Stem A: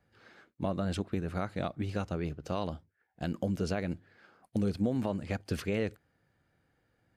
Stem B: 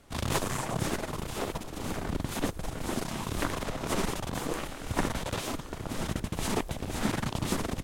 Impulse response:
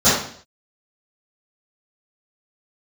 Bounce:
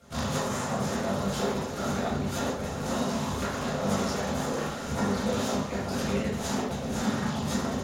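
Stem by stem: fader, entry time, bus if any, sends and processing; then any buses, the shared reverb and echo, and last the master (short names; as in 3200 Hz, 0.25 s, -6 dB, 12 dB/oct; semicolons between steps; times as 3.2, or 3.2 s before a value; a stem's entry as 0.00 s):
-7.0 dB, 0.40 s, send -17 dB, tilt +2 dB/oct
-4.5 dB, 0.00 s, send -13 dB, compressor 4:1, threshold -32 dBFS, peak gain reduction 8.5 dB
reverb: on, RT60 0.55 s, pre-delay 3 ms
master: low shelf 180 Hz -7.5 dB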